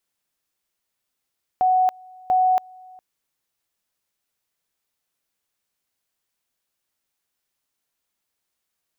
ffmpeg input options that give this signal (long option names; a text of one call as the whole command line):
ffmpeg -f lavfi -i "aevalsrc='pow(10,(-14.5-27*gte(mod(t,0.69),0.28))/20)*sin(2*PI*742*t)':duration=1.38:sample_rate=44100" out.wav